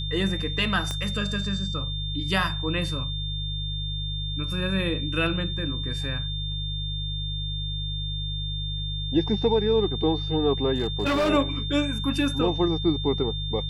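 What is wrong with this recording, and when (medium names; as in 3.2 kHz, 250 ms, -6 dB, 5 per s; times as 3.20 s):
hum 50 Hz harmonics 3 -31 dBFS
whine 3.6 kHz -32 dBFS
0.91 s: pop -16 dBFS
10.74–11.30 s: clipped -19.5 dBFS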